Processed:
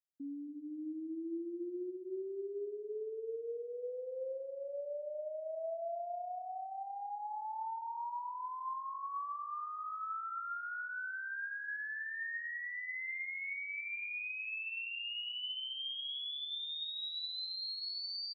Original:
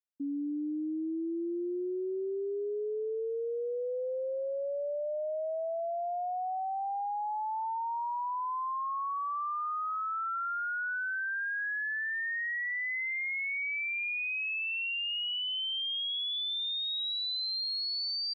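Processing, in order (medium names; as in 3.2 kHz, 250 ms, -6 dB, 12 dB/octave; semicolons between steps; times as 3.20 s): on a send: feedback delay 275 ms, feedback 28%, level -11.5 dB; on the sum: two-slope reverb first 0.82 s, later 2.3 s, DRR 10 dB; trim -8 dB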